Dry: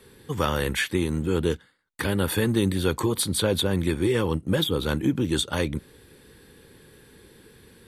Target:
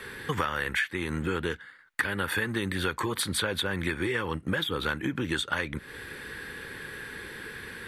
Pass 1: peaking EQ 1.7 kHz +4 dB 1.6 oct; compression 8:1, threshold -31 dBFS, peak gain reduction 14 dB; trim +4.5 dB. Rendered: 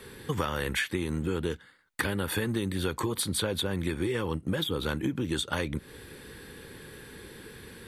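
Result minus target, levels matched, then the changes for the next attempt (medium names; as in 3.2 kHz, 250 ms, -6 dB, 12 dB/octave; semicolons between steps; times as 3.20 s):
2 kHz band -6.0 dB
change: peaking EQ 1.7 kHz +16 dB 1.6 oct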